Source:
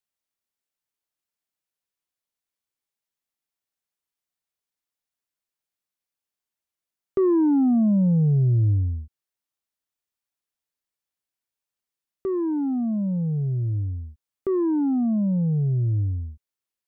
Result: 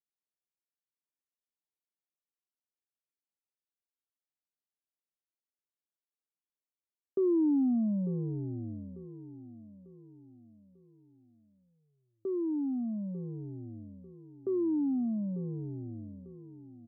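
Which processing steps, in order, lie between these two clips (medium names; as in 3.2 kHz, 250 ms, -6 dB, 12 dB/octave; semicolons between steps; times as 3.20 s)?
ladder band-pass 360 Hz, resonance 20%; on a send: feedback delay 895 ms, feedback 41%, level -15 dB; on the sum: trim +2.5 dB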